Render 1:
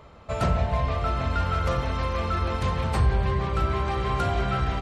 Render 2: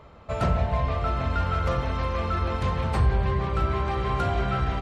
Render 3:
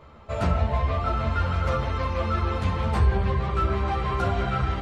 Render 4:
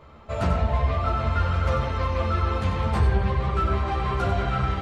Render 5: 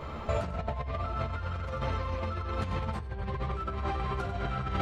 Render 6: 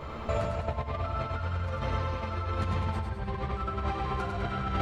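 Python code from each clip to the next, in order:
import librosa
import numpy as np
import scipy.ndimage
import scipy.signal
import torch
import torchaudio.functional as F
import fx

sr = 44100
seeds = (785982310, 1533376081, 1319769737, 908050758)

y1 = fx.high_shelf(x, sr, hz=4600.0, db=-6.5)
y2 = fx.ensemble(y1, sr)
y2 = y2 * librosa.db_to_amplitude(3.5)
y3 = y2 + 10.0 ** (-8.5 / 20.0) * np.pad(y2, (int(93 * sr / 1000.0), 0))[:len(y2)]
y4 = fx.over_compress(y3, sr, threshold_db=-33.0, ratio=-1.0)
y5 = fx.echo_feedback(y4, sr, ms=102, feedback_pct=51, wet_db=-5.0)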